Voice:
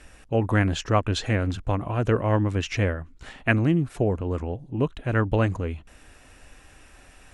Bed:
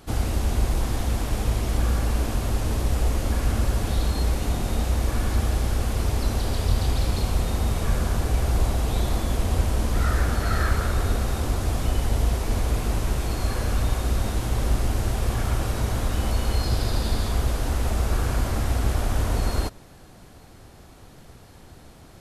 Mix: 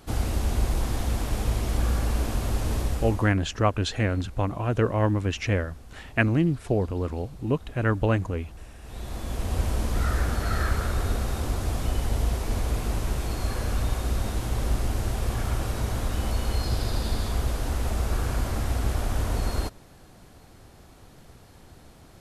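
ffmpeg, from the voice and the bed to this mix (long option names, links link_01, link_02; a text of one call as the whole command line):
ffmpeg -i stem1.wav -i stem2.wav -filter_complex "[0:a]adelay=2700,volume=-1dB[link_01];[1:a]volume=18dB,afade=type=out:start_time=2.78:duration=0.56:silence=0.0891251,afade=type=in:start_time=8.8:duration=0.87:silence=0.1[link_02];[link_01][link_02]amix=inputs=2:normalize=0" out.wav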